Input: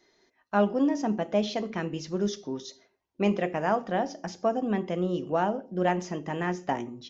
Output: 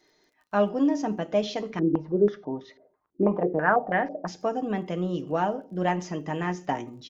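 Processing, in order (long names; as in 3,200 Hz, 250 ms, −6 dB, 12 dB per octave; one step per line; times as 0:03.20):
comb filter 6.6 ms, depth 37%
surface crackle 34 per second −53 dBFS
0:01.79–0:04.27: low-pass on a step sequencer 6.1 Hz 340–2,000 Hz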